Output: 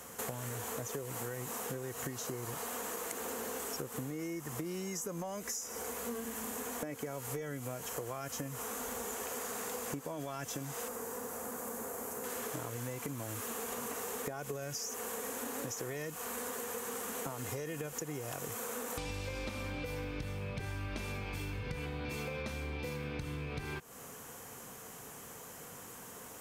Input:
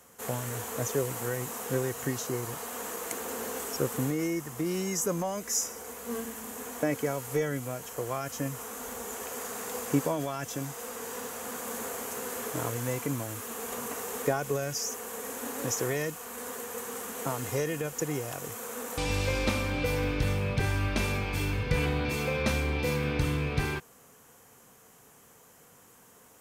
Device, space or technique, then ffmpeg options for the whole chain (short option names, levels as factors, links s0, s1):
serial compression, leveller first: -filter_complex "[0:a]acompressor=threshold=0.0224:ratio=3,acompressor=threshold=0.00562:ratio=6,asettb=1/sr,asplit=3[s0][s1][s2];[s0]atrim=end=10.884[s3];[s1]atrim=start=10.88:end=12.24,asetpts=PTS-STARTPTS,afade=t=in:d=0.004:c=qsin,afade=t=out:st=1.356:d=0.004:c=qsin,equalizer=f=3300:t=o:w=1.7:g=-11[s4];[s2]atrim=start=12.236[s5];[s3][s4]acrossfade=d=0.004:c1=hsin:c2=qsin[s6];[s6][s5]acrossfade=d=0.004:c1=qsin:c2=hsin,volume=2.37"